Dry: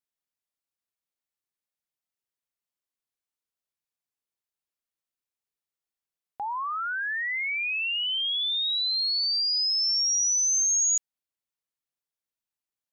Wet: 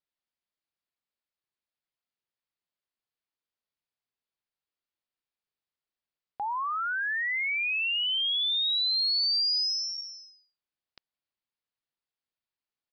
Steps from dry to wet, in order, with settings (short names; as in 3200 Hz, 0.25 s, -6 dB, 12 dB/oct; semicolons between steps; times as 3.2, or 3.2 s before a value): downsampling 11025 Hz